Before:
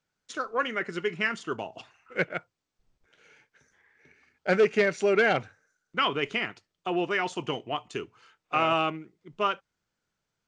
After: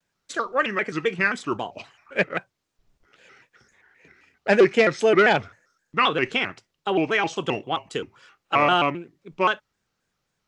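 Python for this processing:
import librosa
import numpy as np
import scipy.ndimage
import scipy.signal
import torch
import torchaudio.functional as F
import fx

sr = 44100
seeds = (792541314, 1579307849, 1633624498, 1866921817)

y = fx.vibrato_shape(x, sr, shape='square', rate_hz=3.8, depth_cents=160.0)
y = y * 10.0 ** (5.5 / 20.0)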